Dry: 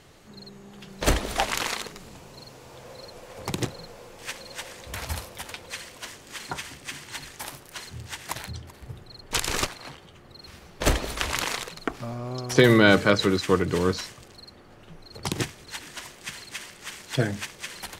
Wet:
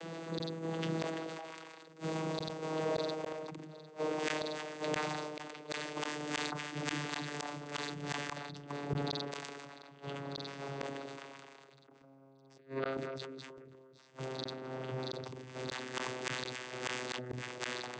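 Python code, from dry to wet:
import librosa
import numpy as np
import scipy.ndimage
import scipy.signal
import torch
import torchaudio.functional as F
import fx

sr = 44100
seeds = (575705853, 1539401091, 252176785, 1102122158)

y = fx.vocoder_glide(x, sr, note=52, semitones=-5)
y = fx.over_compress(y, sr, threshold_db=-32.0, ratio=-1.0)
y = scipy.signal.sosfilt(scipy.signal.butter(2, 280.0, 'highpass', fs=sr, output='sos'), y)
y = fx.gate_flip(y, sr, shuts_db=-34.0, range_db=-35)
y = fx.sustainer(y, sr, db_per_s=24.0)
y = y * librosa.db_to_amplitude(9.0)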